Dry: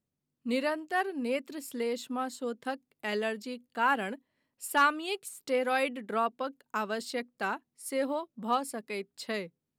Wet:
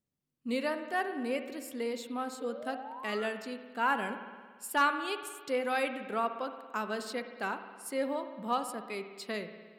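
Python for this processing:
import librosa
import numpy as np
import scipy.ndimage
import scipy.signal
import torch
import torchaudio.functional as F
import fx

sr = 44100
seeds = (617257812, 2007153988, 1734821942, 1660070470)

y = fx.spec_paint(x, sr, seeds[0], shape='rise', start_s=2.4, length_s=0.87, low_hz=450.0, high_hz=1500.0, level_db=-42.0)
y = fx.rev_spring(y, sr, rt60_s=1.6, pass_ms=(56,), chirp_ms=40, drr_db=8.5)
y = y * librosa.db_to_amplitude(-2.5)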